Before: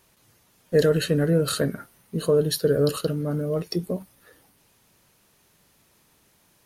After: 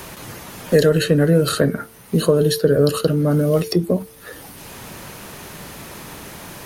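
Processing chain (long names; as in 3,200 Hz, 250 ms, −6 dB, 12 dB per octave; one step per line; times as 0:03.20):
hum removal 111.8 Hz, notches 4
multiband upward and downward compressor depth 70%
level +7.5 dB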